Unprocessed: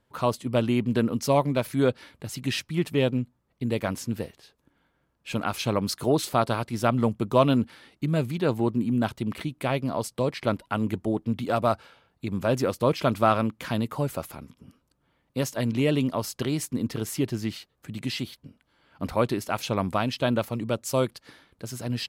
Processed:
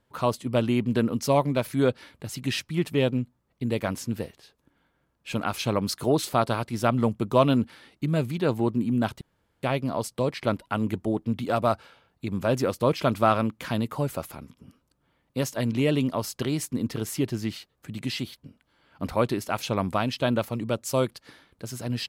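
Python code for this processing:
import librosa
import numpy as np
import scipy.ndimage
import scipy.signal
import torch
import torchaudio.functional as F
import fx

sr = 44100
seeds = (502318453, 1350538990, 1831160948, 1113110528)

y = fx.edit(x, sr, fx.room_tone_fill(start_s=9.21, length_s=0.42), tone=tone)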